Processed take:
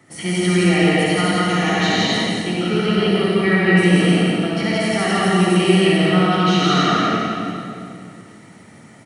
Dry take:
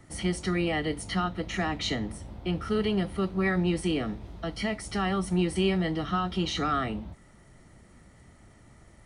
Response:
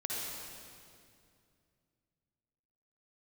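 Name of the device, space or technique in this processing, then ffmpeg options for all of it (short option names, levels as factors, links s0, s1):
stadium PA: -filter_complex "[0:a]highpass=f=130:w=0.5412,highpass=f=130:w=1.3066,equalizer=f=2300:t=o:w=1:g=4,aecho=1:1:169.1|259.5:0.891|0.355[s0];[1:a]atrim=start_sample=2205[s1];[s0][s1]afir=irnorm=-1:irlink=0,volume=1.88"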